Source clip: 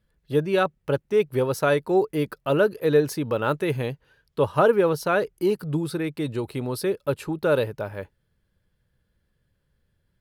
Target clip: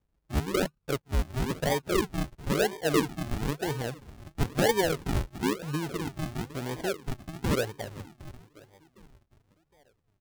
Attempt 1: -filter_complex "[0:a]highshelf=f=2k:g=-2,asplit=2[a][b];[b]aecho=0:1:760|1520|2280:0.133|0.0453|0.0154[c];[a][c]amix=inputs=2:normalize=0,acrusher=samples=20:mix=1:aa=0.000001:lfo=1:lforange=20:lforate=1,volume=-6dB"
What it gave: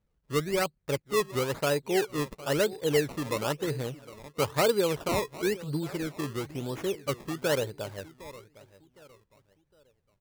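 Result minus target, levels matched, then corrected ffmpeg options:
decimation with a swept rate: distortion -19 dB
-filter_complex "[0:a]highshelf=f=2k:g=-2,asplit=2[a][b];[b]aecho=0:1:760|1520|2280:0.133|0.0453|0.0154[c];[a][c]amix=inputs=2:normalize=0,acrusher=samples=63:mix=1:aa=0.000001:lfo=1:lforange=63:lforate=1,volume=-6dB"

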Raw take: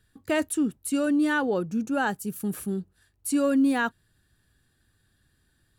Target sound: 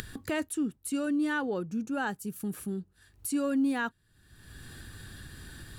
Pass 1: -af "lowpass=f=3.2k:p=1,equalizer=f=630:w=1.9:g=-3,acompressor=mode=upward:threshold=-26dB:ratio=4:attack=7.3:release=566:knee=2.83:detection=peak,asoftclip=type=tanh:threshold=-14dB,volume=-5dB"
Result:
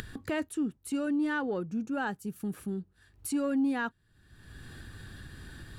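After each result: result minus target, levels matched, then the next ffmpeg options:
soft clip: distortion +12 dB; 8000 Hz band -3.5 dB
-af "lowpass=f=3.2k:p=1,equalizer=f=630:w=1.9:g=-3,acompressor=mode=upward:threshold=-26dB:ratio=4:attack=7.3:release=566:knee=2.83:detection=peak,asoftclip=type=tanh:threshold=-7.5dB,volume=-5dB"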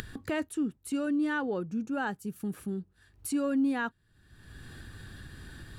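8000 Hz band -4.0 dB
-af "lowpass=f=12k:p=1,equalizer=f=630:w=1.9:g=-3,acompressor=mode=upward:threshold=-26dB:ratio=4:attack=7.3:release=566:knee=2.83:detection=peak,asoftclip=type=tanh:threshold=-7.5dB,volume=-5dB"

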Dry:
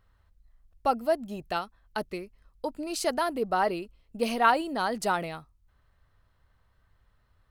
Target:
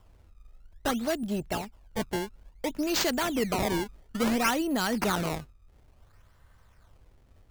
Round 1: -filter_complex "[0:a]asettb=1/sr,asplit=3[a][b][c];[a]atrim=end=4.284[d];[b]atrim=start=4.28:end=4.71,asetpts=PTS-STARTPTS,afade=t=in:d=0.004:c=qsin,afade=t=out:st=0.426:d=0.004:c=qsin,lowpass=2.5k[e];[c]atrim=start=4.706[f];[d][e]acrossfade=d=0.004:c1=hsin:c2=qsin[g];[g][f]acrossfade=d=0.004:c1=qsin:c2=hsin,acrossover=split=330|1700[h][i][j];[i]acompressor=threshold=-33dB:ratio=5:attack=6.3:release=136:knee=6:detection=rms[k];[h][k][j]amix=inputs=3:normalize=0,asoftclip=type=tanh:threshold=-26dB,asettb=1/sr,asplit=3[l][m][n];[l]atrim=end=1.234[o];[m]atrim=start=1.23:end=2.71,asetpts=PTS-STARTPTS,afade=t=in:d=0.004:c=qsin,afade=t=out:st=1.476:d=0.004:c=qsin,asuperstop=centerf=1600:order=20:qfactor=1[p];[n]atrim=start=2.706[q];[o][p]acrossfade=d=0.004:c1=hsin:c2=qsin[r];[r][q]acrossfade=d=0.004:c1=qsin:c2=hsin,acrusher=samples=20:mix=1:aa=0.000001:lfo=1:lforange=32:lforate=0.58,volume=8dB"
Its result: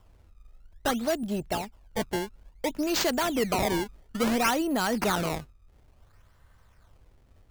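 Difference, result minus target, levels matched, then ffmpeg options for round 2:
compressor: peak gain reduction -5 dB
-filter_complex "[0:a]asettb=1/sr,asplit=3[a][b][c];[a]atrim=end=4.284[d];[b]atrim=start=4.28:end=4.71,asetpts=PTS-STARTPTS,afade=t=in:d=0.004:c=qsin,afade=t=out:st=0.426:d=0.004:c=qsin,lowpass=2.5k[e];[c]atrim=start=4.706[f];[d][e]acrossfade=d=0.004:c1=hsin:c2=qsin[g];[g][f]acrossfade=d=0.004:c1=qsin:c2=hsin,acrossover=split=330|1700[h][i][j];[i]acompressor=threshold=-39dB:ratio=5:attack=6.3:release=136:knee=6:detection=rms[k];[h][k][j]amix=inputs=3:normalize=0,asoftclip=type=tanh:threshold=-26dB,asettb=1/sr,asplit=3[l][m][n];[l]atrim=end=1.234[o];[m]atrim=start=1.23:end=2.71,asetpts=PTS-STARTPTS,afade=t=in:d=0.004:c=qsin,afade=t=out:st=1.476:d=0.004:c=qsin,asuperstop=centerf=1600:order=20:qfactor=1[p];[n]atrim=start=2.706[q];[o][p]acrossfade=d=0.004:c1=hsin:c2=qsin[r];[r][q]acrossfade=d=0.004:c1=qsin:c2=hsin,acrusher=samples=20:mix=1:aa=0.000001:lfo=1:lforange=32:lforate=0.58,volume=8dB"

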